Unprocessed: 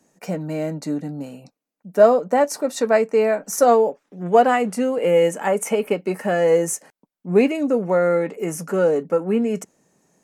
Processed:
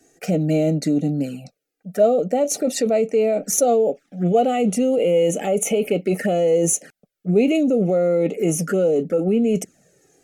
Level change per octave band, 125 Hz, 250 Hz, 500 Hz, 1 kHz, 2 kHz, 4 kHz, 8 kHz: +6.0 dB, +3.5 dB, -0.5 dB, -5.0 dB, -5.5 dB, +2.0 dB, +6.0 dB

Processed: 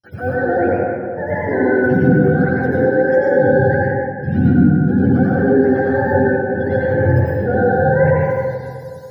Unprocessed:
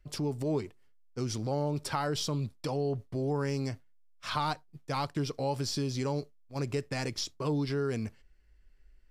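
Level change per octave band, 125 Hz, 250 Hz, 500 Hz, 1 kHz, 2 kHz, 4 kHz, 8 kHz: +17.0 dB, +20.0 dB, +20.5 dB, +15.0 dB, +23.5 dB, under -10 dB, under -15 dB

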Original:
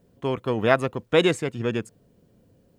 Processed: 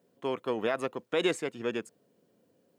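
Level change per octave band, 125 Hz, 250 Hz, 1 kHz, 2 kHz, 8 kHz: -17.0 dB, -8.5 dB, -8.5 dB, -8.5 dB, -4.5 dB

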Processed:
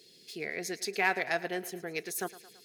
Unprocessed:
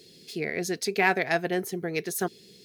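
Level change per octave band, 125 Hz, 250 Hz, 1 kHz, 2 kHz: -12.0 dB, -9.5 dB, -5.5 dB, -4.0 dB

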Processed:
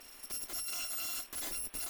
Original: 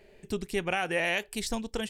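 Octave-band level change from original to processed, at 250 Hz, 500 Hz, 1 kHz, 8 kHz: -22.0 dB, -24.0 dB, -16.5 dB, +4.0 dB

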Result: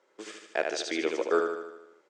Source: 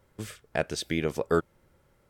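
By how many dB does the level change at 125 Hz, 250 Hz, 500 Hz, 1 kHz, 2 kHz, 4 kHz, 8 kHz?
under -20 dB, -3.0 dB, +1.0 dB, +1.5 dB, +1.5 dB, +1.0 dB, 0.0 dB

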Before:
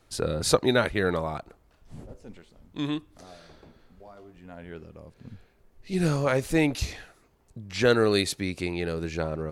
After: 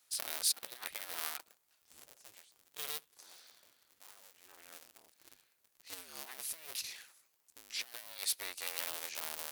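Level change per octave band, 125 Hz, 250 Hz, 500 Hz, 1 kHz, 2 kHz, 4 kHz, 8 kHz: under -40 dB, -37.5 dB, -30.0 dB, -17.5 dB, -15.0 dB, -7.0 dB, -1.5 dB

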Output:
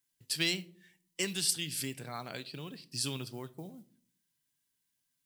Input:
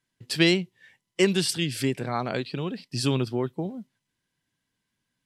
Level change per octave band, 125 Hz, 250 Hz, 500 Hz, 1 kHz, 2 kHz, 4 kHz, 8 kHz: -14.0 dB, -15.0 dB, -16.5 dB, -12.5 dB, -9.0 dB, -5.5 dB, 0.0 dB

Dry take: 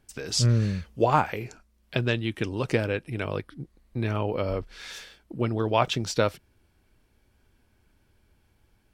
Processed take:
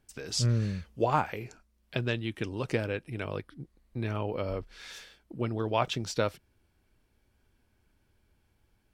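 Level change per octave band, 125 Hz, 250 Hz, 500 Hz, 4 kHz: -5.0 dB, -5.0 dB, -5.0 dB, -5.0 dB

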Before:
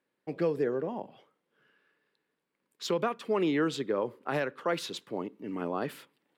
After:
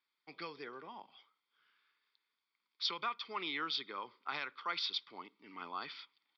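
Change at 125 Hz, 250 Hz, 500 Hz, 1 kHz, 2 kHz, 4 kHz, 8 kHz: -23.0 dB, -20.0 dB, -21.0 dB, -5.0 dB, -4.0 dB, +3.5 dB, -15.0 dB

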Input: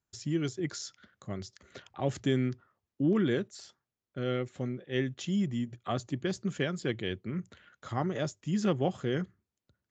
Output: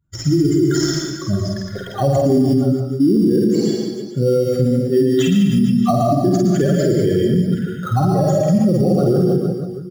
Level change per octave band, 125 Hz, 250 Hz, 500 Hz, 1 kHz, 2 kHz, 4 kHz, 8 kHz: +17.5 dB, +17.5 dB, +17.5 dB, +16.5 dB, +6.0 dB, +12.0 dB, no reading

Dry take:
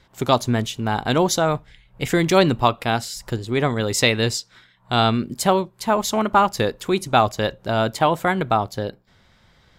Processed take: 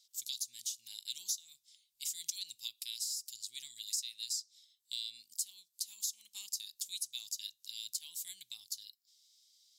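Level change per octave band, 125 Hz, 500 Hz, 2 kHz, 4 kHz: under -40 dB, under -40 dB, -34.0 dB, -13.0 dB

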